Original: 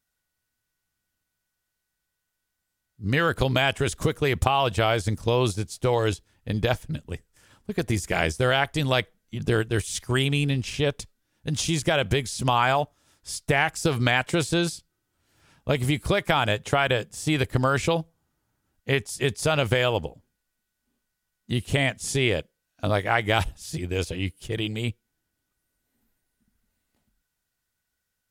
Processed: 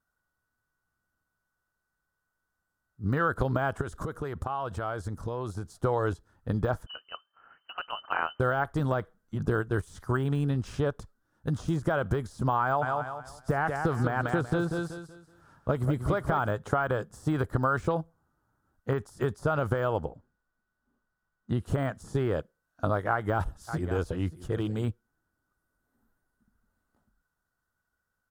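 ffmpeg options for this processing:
ffmpeg -i in.wav -filter_complex "[0:a]asettb=1/sr,asplit=3[link_01][link_02][link_03];[link_01]atrim=end=3.814[link_04];[link_02]atrim=start=3.81:end=5.81,asetpts=PTS-STARTPTS,afade=type=in:duration=0.004:curve=qsin,afade=type=out:start_time=1.996:duration=0.004:curve=qsin,acompressor=threshold=-30dB:ratio=6:attack=3.2:release=140:knee=1:detection=peak[link_05];[link_03]atrim=start=5.806[link_06];[link_04][link_05]acrossfade=duration=0.004:curve1=hsin:curve2=qsin[link_07];[link_07][link_06]acrossfade=duration=0.004:curve1=qsin:curve2=hsin,asettb=1/sr,asplit=3[link_08][link_09][link_10];[link_08]atrim=end=6.864[link_11];[link_09]atrim=start=6.86:end=8.4,asetpts=PTS-STARTPTS,afade=type=in:duration=0.004:curve=qsin,afade=type=out:start_time=1.536:duration=0.004:curve=qsin,lowpass=frequency=2600:width_type=q:width=0.5098,lowpass=frequency=2600:width_type=q:width=0.6013,lowpass=frequency=2600:width_type=q:width=0.9,lowpass=frequency=2600:width_type=q:width=2.563,afreqshift=-3100[link_12];[link_10]atrim=start=8.396[link_13];[link_11][link_12]acrossfade=duration=0.004:curve1=hsin:curve2=qsin[link_14];[link_14][link_13]acrossfade=duration=0.004:curve1=qsin:curve2=hsin,asplit=3[link_15][link_16][link_17];[link_15]afade=type=out:start_time=12.81:duration=0.02[link_18];[link_16]aecho=1:1:188|376|564|752:0.422|0.127|0.038|0.0114,afade=type=in:start_time=12.81:duration=0.02,afade=type=out:start_time=16.46:duration=0.02[link_19];[link_17]afade=type=in:start_time=16.46:duration=0.02[link_20];[link_18][link_19][link_20]amix=inputs=3:normalize=0,asettb=1/sr,asplit=3[link_21][link_22][link_23];[link_21]atrim=end=20.054[link_24];[link_22]atrim=start=20.05:end=21.66,asetpts=PTS-STARTPTS,afade=type=in:duration=0.004:curve=qsin,afade=type=out:start_time=1.606:duration=0.004:curve=qsin,highshelf=frequency=6900:gain=-11.5[link_25];[link_23]atrim=start=21.656[link_26];[link_24][link_25]acrossfade=duration=0.004:curve1=hsin:curve2=qsin[link_27];[link_27][link_26]acrossfade=duration=0.004:curve1=qsin:curve2=hsin,asplit=3[link_28][link_29][link_30];[link_28]afade=type=out:start_time=23.67:duration=0.02[link_31];[link_29]aecho=1:1:581:0.133,afade=type=in:start_time=23.67:duration=0.02,afade=type=out:start_time=24.87:duration=0.02[link_32];[link_30]afade=type=in:start_time=24.87:duration=0.02[link_33];[link_31][link_32][link_33]amix=inputs=3:normalize=0,deesser=0.8,highshelf=frequency=1800:width_type=q:width=3:gain=-9,acompressor=threshold=-24dB:ratio=3" out.wav

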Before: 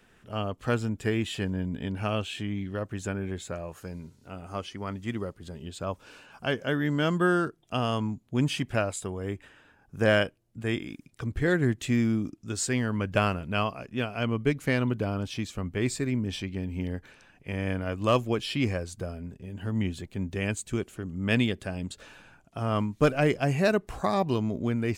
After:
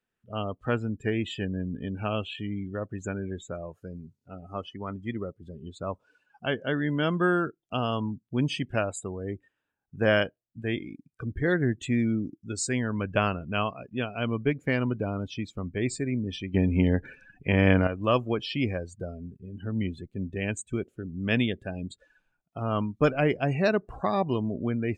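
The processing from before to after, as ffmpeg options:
ffmpeg -i in.wav -filter_complex "[0:a]asplit=3[link_01][link_02][link_03];[link_01]atrim=end=16.542[link_04];[link_02]atrim=start=16.538:end=17.872,asetpts=PTS-STARTPTS,volume=10.5dB[link_05];[link_03]atrim=start=17.868[link_06];[link_04][link_05]acrossfade=duration=0.004:curve1=hsin:curve2=hsin[link_07];[link_07][link_06]acrossfade=duration=0.004:curve1=hsin:curve2=hsin,afftdn=noise_reduction=25:noise_floor=-39,lowshelf=frequency=70:gain=-5.5" out.wav

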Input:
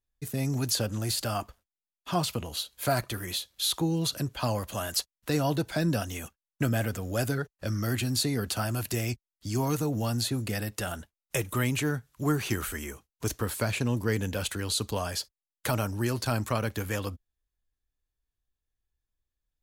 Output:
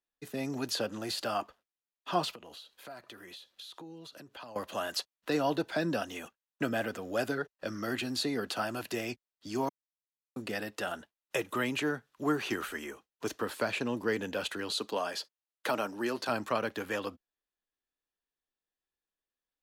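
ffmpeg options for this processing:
ffmpeg -i in.wav -filter_complex "[0:a]asettb=1/sr,asplit=3[link_01][link_02][link_03];[link_01]atrim=end=2.344[link_04];[link_02]atrim=start=2.34:end=4.56,asetpts=PTS-STARTPTS,afade=type=in:duration=0.004:curve=qsin,afade=type=out:start_time=2.216:duration=0.004:curve=qsin,acompressor=threshold=-42dB:ratio=6:attack=3.2:release=140:knee=1:detection=peak[link_05];[link_03]atrim=start=4.556[link_06];[link_04][link_05]acrossfade=duration=0.004:curve1=hsin:curve2=qsin[link_07];[link_07][link_06]acrossfade=duration=0.004:curve1=qsin:curve2=hsin,asettb=1/sr,asplit=3[link_08][link_09][link_10];[link_08]atrim=end=14.704[link_11];[link_09]atrim=start=14.7:end=16.29,asetpts=PTS-STARTPTS,afade=type=in:duration=0.004:curve=qsin,afade=type=out:start_time=1.586:duration=0.004:curve=qsin,highpass=180[link_12];[link_10]atrim=start=16.286[link_13];[link_11][link_12]acrossfade=duration=0.004:curve1=hsin:curve2=qsin[link_14];[link_14][link_13]acrossfade=duration=0.004:curve1=qsin:curve2=hsin,asplit=3[link_15][link_16][link_17];[link_15]atrim=end=9.69,asetpts=PTS-STARTPTS,afade=type=out:start_time=9.686:duration=0.004:curve=hsin[link_18];[link_16]atrim=start=9.69:end=10.36,asetpts=PTS-STARTPTS,volume=0[link_19];[link_17]atrim=start=10.36,asetpts=PTS-STARTPTS,afade=type=in:duration=0.004:curve=hsin[link_20];[link_18][link_19][link_20]concat=n=3:v=0:a=1,acrossover=split=220 4600:gain=0.0708 1 0.224[link_21][link_22][link_23];[link_21][link_22][link_23]amix=inputs=3:normalize=0,bandreject=frequency=2200:width=16" out.wav

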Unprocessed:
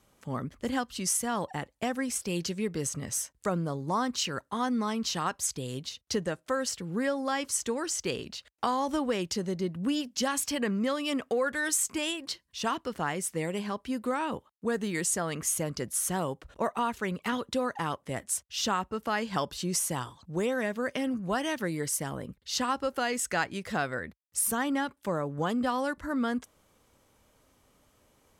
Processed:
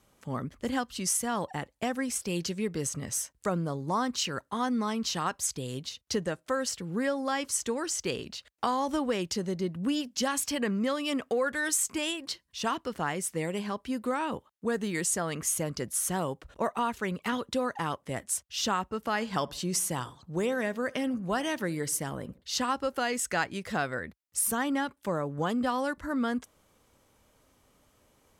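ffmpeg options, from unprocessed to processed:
ffmpeg -i in.wav -filter_complex "[0:a]asettb=1/sr,asplit=3[link_01][link_02][link_03];[link_01]atrim=end=18.984[link_04];[link_02]atrim=start=18.98:end=22.42,asetpts=PTS-STARTPTS,afade=type=in:duration=0.004:curve=qsin,afade=type=out:start_time=3.436:duration=0.004:curve=qsin,asplit=2[link_05][link_06];[link_06]adelay=70,lowpass=frequency=1100:poles=1,volume=-20.5dB,asplit=2[link_07][link_08];[link_08]adelay=70,lowpass=frequency=1100:poles=1,volume=0.51,asplit=2[link_09][link_10];[link_10]adelay=70,lowpass=frequency=1100:poles=1,volume=0.51,asplit=2[link_11][link_12];[link_12]adelay=70,lowpass=frequency=1100:poles=1,volume=0.51[link_13];[link_05][link_07][link_09][link_11][link_13]amix=inputs=5:normalize=0,atrim=end_sample=151704[link_14];[link_03]atrim=start=22.416[link_15];[link_04][link_14]acrossfade=duration=0.004:curve1=hsin:curve2=qsin[link_16];[link_16][link_15]acrossfade=duration=0.004:curve1=qsin:curve2=hsin" out.wav

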